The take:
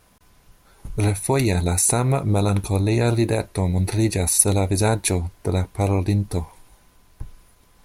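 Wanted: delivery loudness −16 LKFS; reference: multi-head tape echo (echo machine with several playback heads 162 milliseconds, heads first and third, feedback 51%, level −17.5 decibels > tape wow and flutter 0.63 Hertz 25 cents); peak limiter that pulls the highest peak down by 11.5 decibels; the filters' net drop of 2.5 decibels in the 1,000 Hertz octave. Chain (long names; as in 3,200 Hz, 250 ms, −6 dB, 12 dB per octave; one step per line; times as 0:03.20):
parametric band 1,000 Hz −3.5 dB
brickwall limiter −13 dBFS
echo machine with several playback heads 162 ms, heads first and third, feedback 51%, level −17.5 dB
tape wow and flutter 0.63 Hz 25 cents
level +7.5 dB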